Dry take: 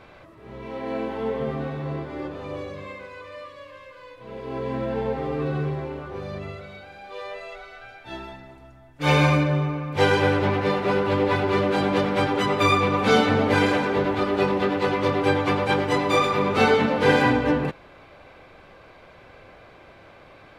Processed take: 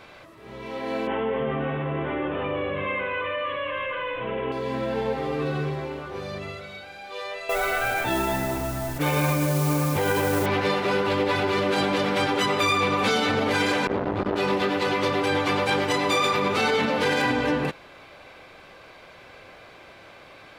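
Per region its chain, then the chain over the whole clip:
0:01.07–0:04.52: elliptic low-pass filter 3,100 Hz + envelope flattener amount 70%
0:07.49–0:10.46: head-to-tape spacing loss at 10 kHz 34 dB + noise that follows the level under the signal 22 dB + envelope flattener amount 70%
0:13.87–0:14.36: spectral tilt −4 dB per octave + saturating transformer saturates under 690 Hz
whole clip: low-shelf EQ 110 Hz −6.5 dB; brickwall limiter −15.5 dBFS; high-shelf EQ 2,400 Hz +9 dB

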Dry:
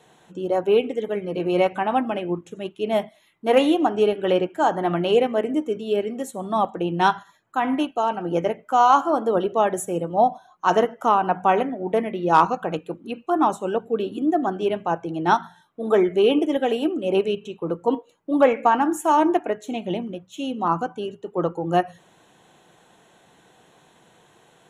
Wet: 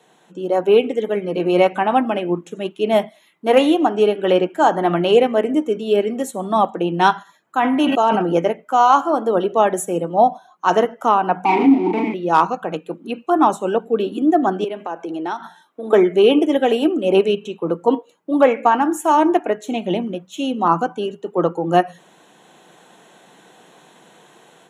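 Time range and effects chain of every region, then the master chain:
0:07.57–0:08.33: hum removal 273.5 Hz, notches 7 + level that may fall only so fast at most 26 dB per second
0:11.45–0:12.14: double-tracking delay 37 ms −2 dB + leveller curve on the samples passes 5 + formant filter u
0:14.64–0:15.93: high-pass filter 220 Hz 24 dB per octave + downward compressor 4 to 1, threshold −30 dBFS
whole clip: high-pass filter 160 Hz 24 dB per octave; automatic gain control gain up to 7 dB

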